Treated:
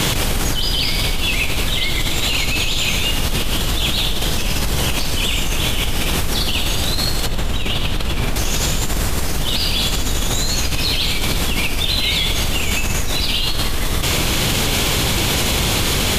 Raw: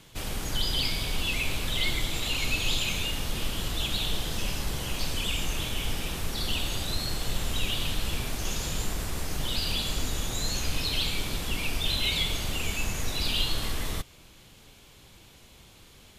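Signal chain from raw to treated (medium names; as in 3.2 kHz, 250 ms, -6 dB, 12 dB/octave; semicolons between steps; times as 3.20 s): 7.26–8.36 s: treble shelf 3.6 kHz -8.5 dB; level flattener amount 100%; trim +4.5 dB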